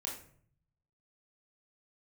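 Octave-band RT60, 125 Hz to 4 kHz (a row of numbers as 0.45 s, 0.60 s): 1.1 s, 0.80 s, 0.60 s, 0.50 s, 0.45 s, 0.35 s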